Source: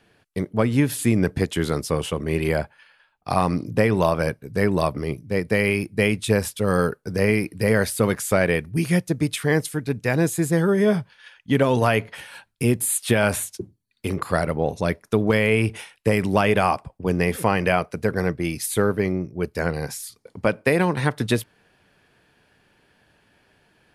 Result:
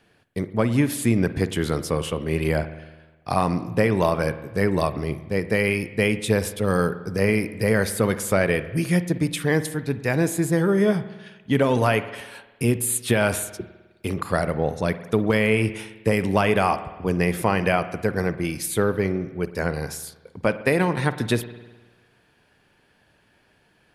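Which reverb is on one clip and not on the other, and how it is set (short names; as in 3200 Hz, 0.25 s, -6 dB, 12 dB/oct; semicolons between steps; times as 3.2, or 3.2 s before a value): spring tank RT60 1.2 s, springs 51 ms, chirp 20 ms, DRR 12.5 dB; gain -1 dB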